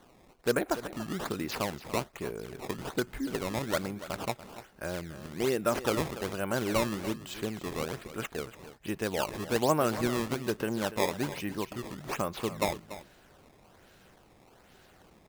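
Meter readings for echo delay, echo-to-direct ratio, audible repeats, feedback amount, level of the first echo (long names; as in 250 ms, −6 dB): 288 ms, −14.0 dB, 1, repeats not evenly spaced, −14.0 dB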